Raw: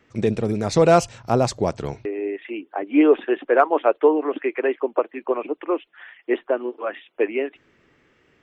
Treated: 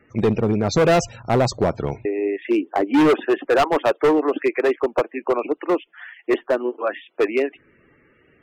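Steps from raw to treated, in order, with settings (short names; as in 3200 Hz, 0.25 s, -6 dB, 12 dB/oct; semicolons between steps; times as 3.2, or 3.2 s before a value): loudest bins only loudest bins 64; 2.46–3.19 bell 360 Hz +9 dB -> +2.5 dB 2.4 oct; overloaded stage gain 16.5 dB; gain +4 dB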